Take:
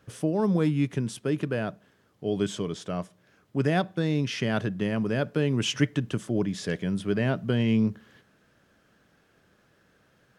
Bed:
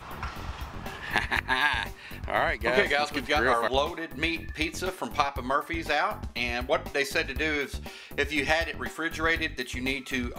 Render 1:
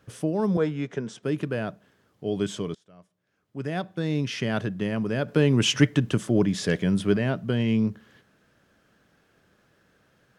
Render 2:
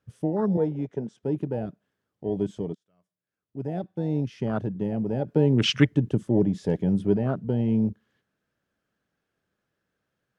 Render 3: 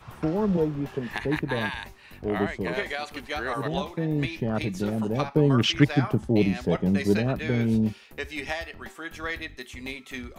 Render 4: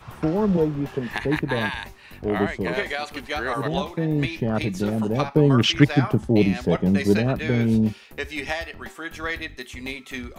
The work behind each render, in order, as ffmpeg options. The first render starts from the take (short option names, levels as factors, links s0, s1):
-filter_complex "[0:a]asettb=1/sr,asplit=3[s0][s1][s2];[s0]atrim=end=0.574[s3];[s1]atrim=start=0.57:end=1.23,asetpts=PTS-STARTPTS,afade=t=in:d=0.004:c=qsin,afade=t=out:st=0.656:d=0.004:c=qsin,highpass=190,equalizer=f=290:t=q:w=4:g=-5,equalizer=f=440:t=q:w=4:g=6,equalizer=f=660:t=q:w=4:g=6,equalizer=f=1500:t=q:w=4:g=5,equalizer=f=2600:t=q:w=4:g=-4,equalizer=f=4400:t=q:w=4:g=-7,lowpass=f=6800:w=0.5412,lowpass=f=6800:w=1.3066[s4];[s2]atrim=start=1.226[s5];[s3][s4]acrossfade=d=0.004:c1=hsin:c2=qsin[s6];[s6][s5]acrossfade=d=0.004:c1=qsin:c2=hsin,asettb=1/sr,asplit=3[s7][s8][s9];[s7]atrim=end=5.284[s10];[s8]atrim=start=5.28:end=7.17,asetpts=PTS-STARTPTS,afade=t=in:d=0.004:c=qsin,afade=t=out:st=1.886:d=0.004:c=qsin,acontrast=31[s11];[s9]atrim=start=7.166[s12];[s10][s11]acrossfade=d=0.004:c1=hsin:c2=qsin[s13];[s13][s12]acrossfade=d=0.004:c1=qsin:c2=hsin,asplit=2[s14][s15];[s14]atrim=end=2.75,asetpts=PTS-STARTPTS,afade=t=out:st=2.746:d=0.004:c=hsin:silence=0.0707946[s16];[s15]atrim=start=2.75,asetpts=PTS-STARTPTS,afade=t=in:d=1.4:c=qua:silence=0.0707946[s17];[s16][s17]concat=n=2:v=0:a=1"
-af "afwtdn=0.0447"
-filter_complex "[1:a]volume=0.473[s0];[0:a][s0]amix=inputs=2:normalize=0"
-af "volume=1.5"